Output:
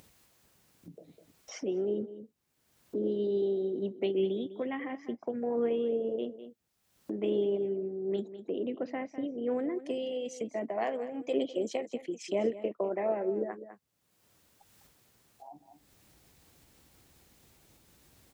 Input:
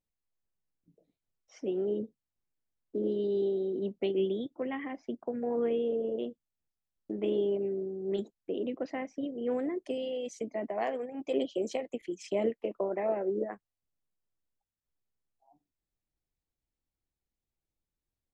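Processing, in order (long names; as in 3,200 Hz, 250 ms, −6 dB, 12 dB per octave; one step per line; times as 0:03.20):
0:07.66–0:09.75: high-shelf EQ 4,500 Hz −7.5 dB
single-tap delay 202 ms −15 dB
upward compression, threshold −34 dBFS
high-pass filter 76 Hz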